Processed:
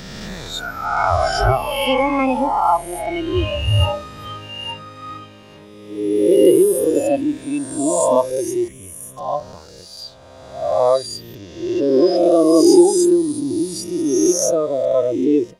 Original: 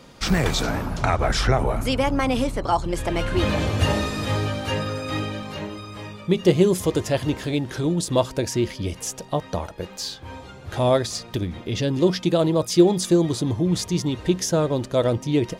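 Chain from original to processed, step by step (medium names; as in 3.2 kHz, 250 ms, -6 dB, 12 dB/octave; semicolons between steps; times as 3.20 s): reverse spectral sustain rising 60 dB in 2.64 s; 8.68–9.17 s: static phaser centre 2 kHz, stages 4; spectral noise reduction 18 dB; trim +3 dB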